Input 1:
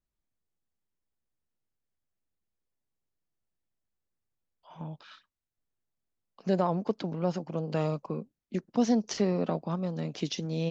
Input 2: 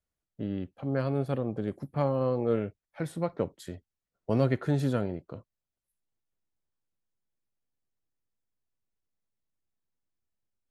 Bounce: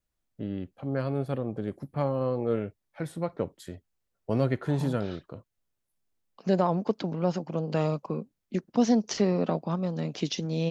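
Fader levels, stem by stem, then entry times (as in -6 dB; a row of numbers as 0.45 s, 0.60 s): +2.5 dB, -0.5 dB; 0.00 s, 0.00 s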